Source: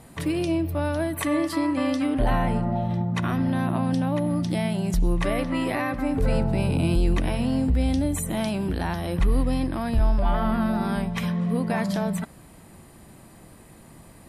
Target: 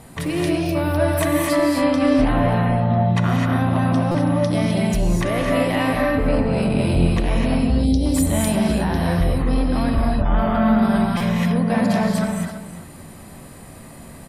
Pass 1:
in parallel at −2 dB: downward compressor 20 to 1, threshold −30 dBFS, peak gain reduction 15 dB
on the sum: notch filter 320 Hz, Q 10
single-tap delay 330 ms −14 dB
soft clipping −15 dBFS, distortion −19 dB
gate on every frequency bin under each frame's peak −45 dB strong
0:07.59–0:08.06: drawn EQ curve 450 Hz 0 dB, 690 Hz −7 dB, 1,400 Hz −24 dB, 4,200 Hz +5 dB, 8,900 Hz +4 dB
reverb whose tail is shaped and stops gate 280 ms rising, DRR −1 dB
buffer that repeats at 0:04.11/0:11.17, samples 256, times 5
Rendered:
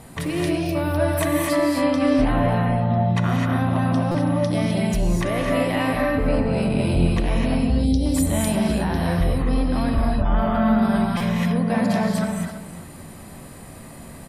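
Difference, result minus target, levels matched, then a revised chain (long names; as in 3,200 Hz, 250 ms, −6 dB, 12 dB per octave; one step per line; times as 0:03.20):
downward compressor: peak gain reduction +10.5 dB
in parallel at −2 dB: downward compressor 20 to 1, threshold −19 dBFS, peak gain reduction 4.5 dB
on the sum: notch filter 320 Hz, Q 10
single-tap delay 330 ms −14 dB
soft clipping −15 dBFS, distortion −15 dB
gate on every frequency bin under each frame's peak −45 dB strong
0:07.59–0:08.06: drawn EQ curve 450 Hz 0 dB, 690 Hz −7 dB, 1,400 Hz −24 dB, 4,200 Hz +5 dB, 8,900 Hz +4 dB
reverb whose tail is shaped and stops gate 280 ms rising, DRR −1 dB
buffer that repeats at 0:04.11/0:11.17, samples 256, times 5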